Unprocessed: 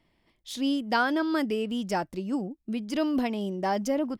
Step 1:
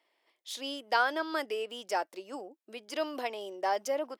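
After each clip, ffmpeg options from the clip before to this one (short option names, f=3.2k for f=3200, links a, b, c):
-af "highpass=f=430:w=0.5412,highpass=f=430:w=1.3066,volume=-1.5dB"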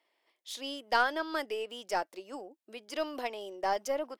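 -af "aeval=exprs='0.224*(cos(1*acos(clip(val(0)/0.224,-1,1)))-cos(1*PI/2))+0.01*(cos(4*acos(clip(val(0)/0.224,-1,1)))-cos(4*PI/2))+0.00501*(cos(7*acos(clip(val(0)/0.224,-1,1)))-cos(7*PI/2))':c=same"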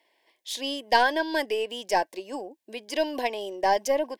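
-af "asuperstop=centerf=1300:order=12:qfactor=3.6,volume=8dB"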